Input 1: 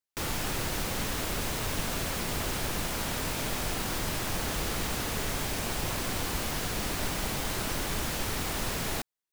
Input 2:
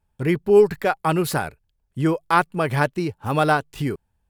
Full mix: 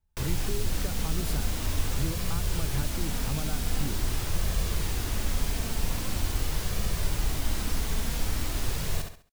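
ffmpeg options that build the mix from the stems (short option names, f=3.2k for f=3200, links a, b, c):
-filter_complex "[0:a]flanger=delay=1.7:depth=2.8:regen=-45:speed=0.44:shape=sinusoidal,volume=1.5dB,asplit=2[a][b];[b]volume=-6dB[c];[1:a]acompressor=threshold=-19dB:ratio=6,volume=-11.5dB[d];[c]aecho=0:1:68|136|204|272:1|0.31|0.0961|0.0298[e];[a][d][e]amix=inputs=3:normalize=0,acrossover=split=270|3000[f][g][h];[g]acompressor=threshold=-39dB:ratio=6[i];[f][i][h]amix=inputs=3:normalize=0,lowshelf=f=110:g=11"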